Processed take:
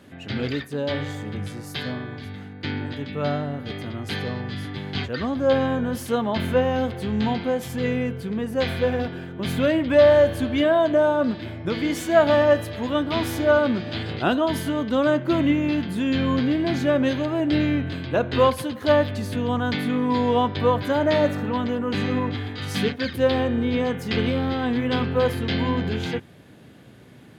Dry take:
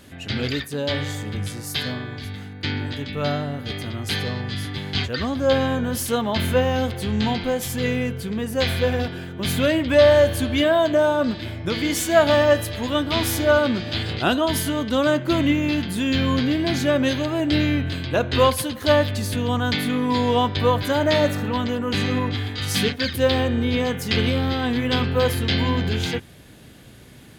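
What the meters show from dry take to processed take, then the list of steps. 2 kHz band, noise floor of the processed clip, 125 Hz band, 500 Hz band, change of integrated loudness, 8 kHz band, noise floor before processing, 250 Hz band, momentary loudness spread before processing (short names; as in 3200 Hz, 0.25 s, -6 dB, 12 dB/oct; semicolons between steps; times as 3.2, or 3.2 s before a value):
-3.0 dB, -43 dBFS, -3.5 dB, -0.5 dB, -1.5 dB, -10.5 dB, -39 dBFS, -0.5 dB, 9 LU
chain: HPF 110 Hz 12 dB/oct; high shelf 3100 Hz -12 dB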